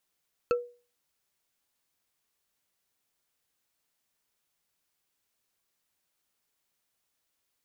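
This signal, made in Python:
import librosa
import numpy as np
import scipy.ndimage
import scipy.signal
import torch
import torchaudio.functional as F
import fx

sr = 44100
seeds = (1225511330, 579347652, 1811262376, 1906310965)

y = fx.strike_wood(sr, length_s=0.45, level_db=-19.5, body='bar', hz=484.0, decay_s=0.36, tilt_db=6.0, modes=5)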